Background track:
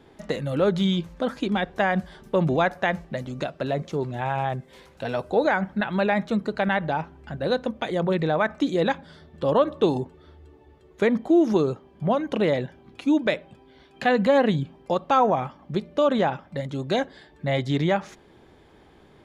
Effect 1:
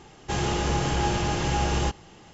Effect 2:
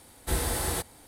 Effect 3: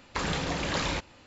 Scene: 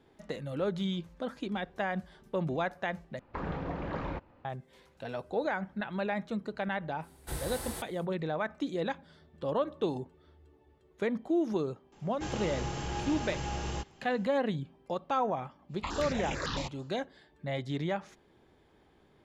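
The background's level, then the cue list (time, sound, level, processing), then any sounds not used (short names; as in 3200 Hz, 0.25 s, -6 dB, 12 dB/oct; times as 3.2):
background track -10.5 dB
3.19 replace with 3 -4 dB + LPF 1200 Hz
7 add 2 -10 dB, fades 0.05 s
11.92 add 1 -11 dB
15.68 add 3 -3 dB, fades 0.10 s + step phaser 9 Hz 420–4400 Hz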